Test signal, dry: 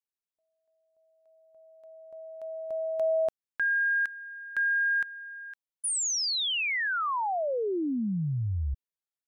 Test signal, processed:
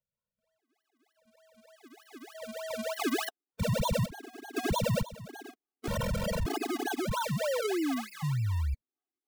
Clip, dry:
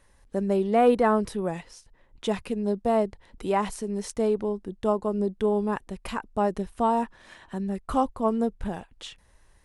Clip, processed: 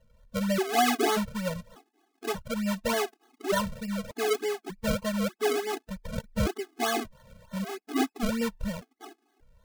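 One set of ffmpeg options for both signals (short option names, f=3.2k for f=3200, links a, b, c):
-af "acrusher=samples=34:mix=1:aa=0.000001:lfo=1:lforange=34:lforate=3.3,afftfilt=real='re*gt(sin(2*PI*0.85*pts/sr)*(1-2*mod(floor(b*sr/1024/220),2)),0)':imag='im*gt(sin(2*PI*0.85*pts/sr)*(1-2*mod(floor(b*sr/1024/220),2)),0)':win_size=1024:overlap=0.75"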